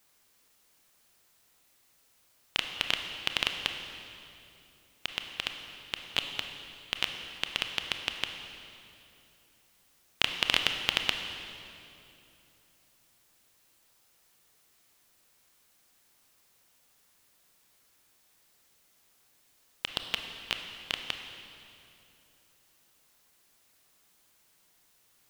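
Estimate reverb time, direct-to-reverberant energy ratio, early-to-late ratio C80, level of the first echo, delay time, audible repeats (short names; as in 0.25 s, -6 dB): 2.8 s, 5.0 dB, 6.5 dB, none, none, none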